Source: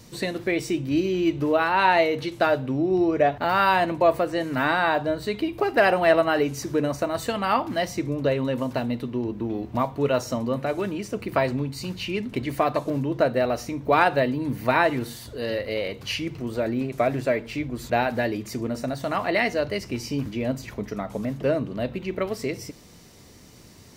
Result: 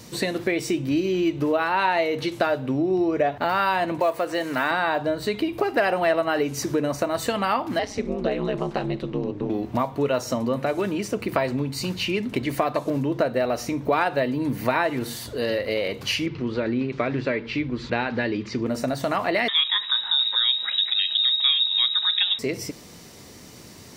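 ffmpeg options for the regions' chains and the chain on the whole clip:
ffmpeg -i in.wav -filter_complex "[0:a]asettb=1/sr,asplit=3[link_01][link_02][link_03];[link_01]atrim=end=3.994[link_04];[link_02]atrim=start=3.99:end=4.71,asetpts=PTS-STARTPTS,afade=type=in:duration=0.004:curve=qsin,afade=type=out:start_time=0.716:duration=0.004:curve=qsin,acompressor=mode=upward:threshold=-25dB:ratio=2.5:attack=3.2:release=140:knee=2.83:detection=peak,lowshelf=frequency=260:gain=-11.5,acrusher=bits=8:mode=log:mix=0:aa=0.000001[link_05];[link_03]atrim=start=4.706[link_06];[link_04][link_05]acrossfade=duration=0.004:curve1=hsin:curve2=qsin[link_07];[link_07][link_06]acrossfade=duration=0.004:curve1=qsin:curve2=hsin,asettb=1/sr,asplit=3[link_08][link_09][link_10];[link_08]atrim=end=7.794[link_11];[link_09]atrim=start=7.79:end=9.5,asetpts=PTS-STARTPTS,afade=type=in:duration=0.004:curve=qsin,afade=type=out:start_time=1.706:duration=0.004:curve=qsin,lowpass=6300,aeval=exprs='val(0)*sin(2*PI*98*n/s)':channel_layout=same[link_12];[link_10]atrim=start=9.496[link_13];[link_11][link_12]acrossfade=duration=0.004:curve1=hsin:curve2=qsin[link_14];[link_14][link_13]acrossfade=duration=0.004:curve1=qsin:curve2=hsin,asettb=1/sr,asplit=3[link_15][link_16][link_17];[link_15]atrim=end=16.264[link_18];[link_16]atrim=start=16.26:end=18.66,asetpts=PTS-STARTPTS,afade=type=in:duration=0.004:curve=qsin,afade=type=out:start_time=2.396:duration=0.004:curve=qsin,lowpass=frequency=4700:width=0.5412,lowpass=frequency=4700:width=1.3066,equalizer=frequency=670:width_type=o:width=0.4:gain=-11[link_19];[link_17]atrim=start=18.656[link_20];[link_18][link_19]acrossfade=duration=0.004:curve1=hsin:curve2=qsin[link_21];[link_21][link_20]acrossfade=duration=0.004:curve1=qsin:curve2=hsin,asettb=1/sr,asplit=3[link_22][link_23][link_24];[link_22]atrim=end=19.484[link_25];[link_23]atrim=start=19.48:end=22.39,asetpts=PTS-STARTPTS,afade=type=in:duration=0.004:curve=qsin,afade=type=out:start_time=2.906:duration=0.004:curve=qsin,asubboost=boost=4.5:cutoff=200,acontrast=54,lowpass=frequency=3300:width_type=q:width=0.5098,lowpass=frequency=3300:width_type=q:width=0.6013,lowpass=frequency=3300:width_type=q:width=0.9,lowpass=frequency=3300:width_type=q:width=2.563,afreqshift=-3900[link_26];[link_24]atrim=start=22.386[link_27];[link_25][link_26]acrossfade=duration=0.004:curve1=hsin:curve2=qsin[link_28];[link_28][link_27]acrossfade=duration=0.004:curve1=qsin:curve2=hsin,lowshelf=frequency=87:gain=-10,acompressor=threshold=-28dB:ratio=2.5,volume=6dB" out.wav

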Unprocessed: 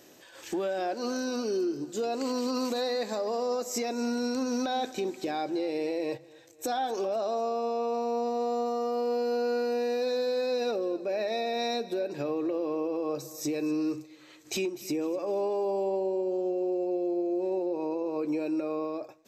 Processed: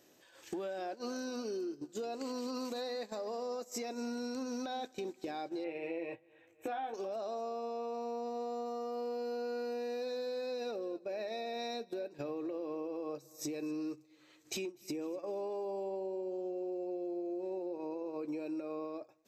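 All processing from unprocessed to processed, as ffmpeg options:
ffmpeg -i in.wav -filter_complex "[0:a]asettb=1/sr,asplit=3[link_01][link_02][link_03];[link_01]atrim=end=5.644[link_04];[link_02]atrim=start=5.64:end=6.94,asetpts=PTS-STARTPTS,afade=type=in:duration=0.004:curve=qsin,afade=type=out:start_time=1.296:duration=0.004:curve=qsin,highshelf=frequency=3500:width_type=q:width=3:gain=-11.5,asplit=2[link_05][link_06];[link_06]adelay=18,volume=-5.5dB[link_07];[link_05][link_07]amix=inputs=2:normalize=0,atrim=end_sample=57330[link_08];[link_03]atrim=start=6.936[link_09];[link_04][link_08]acrossfade=duration=0.004:curve1=hsin:curve2=qsin[link_10];[link_10][link_09]acrossfade=duration=0.004:curve1=qsin:curve2=hsin,acompressor=threshold=-42dB:ratio=4,agate=range=-13dB:threshold=-43dB:ratio=16:detection=peak,volume=3dB" out.wav

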